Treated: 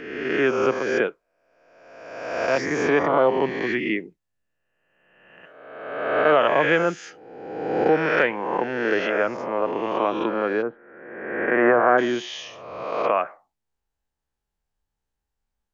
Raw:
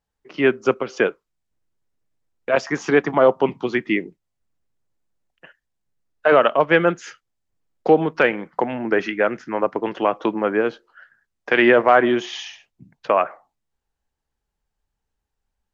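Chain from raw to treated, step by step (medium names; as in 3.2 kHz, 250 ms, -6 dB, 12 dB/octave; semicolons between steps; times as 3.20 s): reverse spectral sustain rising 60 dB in 1.37 s; 10.61–11.97 s: low-pass 1.4 kHz -> 2 kHz 24 dB/octave; trim -6 dB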